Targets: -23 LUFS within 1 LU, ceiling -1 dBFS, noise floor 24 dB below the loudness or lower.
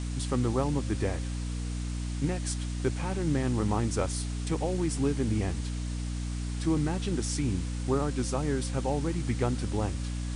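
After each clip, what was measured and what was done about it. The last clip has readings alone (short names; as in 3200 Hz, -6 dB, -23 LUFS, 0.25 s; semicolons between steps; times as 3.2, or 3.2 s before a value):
hum 60 Hz; harmonics up to 300 Hz; hum level -31 dBFS; noise floor -34 dBFS; noise floor target -55 dBFS; loudness -30.5 LUFS; peak -14.5 dBFS; loudness target -23.0 LUFS
-> de-hum 60 Hz, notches 5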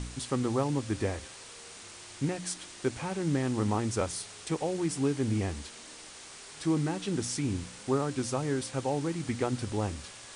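hum none; noise floor -48 dBFS; noise floor target -56 dBFS
-> noise print and reduce 8 dB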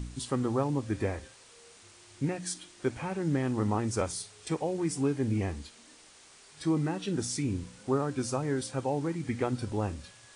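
noise floor -56 dBFS; loudness -32.0 LUFS; peak -16.5 dBFS; loudness target -23.0 LUFS
-> gain +9 dB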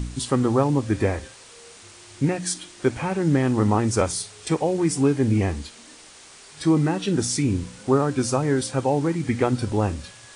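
loudness -23.0 LUFS; peak -7.5 dBFS; noise floor -47 dBFS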